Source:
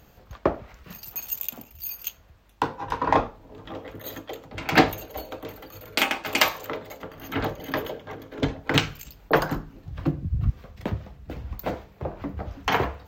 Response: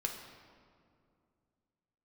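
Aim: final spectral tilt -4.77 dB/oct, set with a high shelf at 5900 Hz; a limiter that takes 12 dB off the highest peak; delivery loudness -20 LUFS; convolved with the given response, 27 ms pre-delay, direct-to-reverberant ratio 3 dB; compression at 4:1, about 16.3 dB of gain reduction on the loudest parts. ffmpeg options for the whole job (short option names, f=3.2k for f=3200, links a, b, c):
-filter_complex "[0:a]highshelf=f=5.9k:g=-6,acompressor=threshold=-33dB:ratio=4,alimiter=level_in=2dB:limit=-24dB:level=0:latency=1,volume=-2dB,asplit=2[a][b];[1:a]atrim=start_sample=2205,adelay=27[c];[b][c]afir=irnorm=-1:irlink=0,volume=-5dB[d];[a][d]amix=inputs=2:normalize=0,volume=19dB"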